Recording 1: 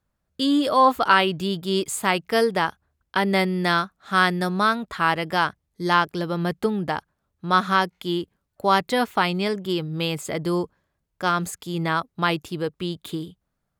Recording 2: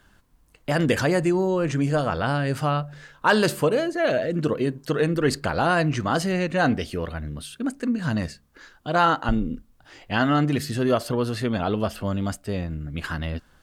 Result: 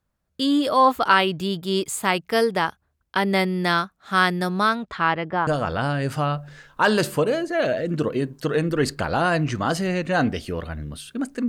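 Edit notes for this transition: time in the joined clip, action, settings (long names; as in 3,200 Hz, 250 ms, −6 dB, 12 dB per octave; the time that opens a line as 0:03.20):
recording 1
0:04.69–0:05.47: low-pass filter 11,000 Hz → 1,100 Hz
0:05.47: continue with recording 2 from 0:01.92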